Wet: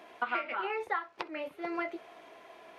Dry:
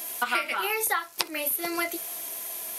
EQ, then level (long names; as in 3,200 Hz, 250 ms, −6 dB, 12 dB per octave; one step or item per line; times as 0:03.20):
bass and treble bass −7 dB, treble −13 dB
head-to-tape spacing loss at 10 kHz 28 dB
−1.5 dB